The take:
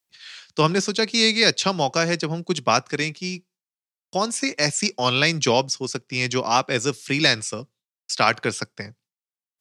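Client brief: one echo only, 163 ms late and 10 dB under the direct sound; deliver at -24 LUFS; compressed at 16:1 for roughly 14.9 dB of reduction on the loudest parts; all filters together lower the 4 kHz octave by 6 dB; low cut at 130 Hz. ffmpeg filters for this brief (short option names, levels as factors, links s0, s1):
-af "highpass=130,equalizer=f=4000:t=o:g=-7.5,acompressor=threshold=0.0355:ratio=16,aecho=1:1:163:0.316,volume=3.16"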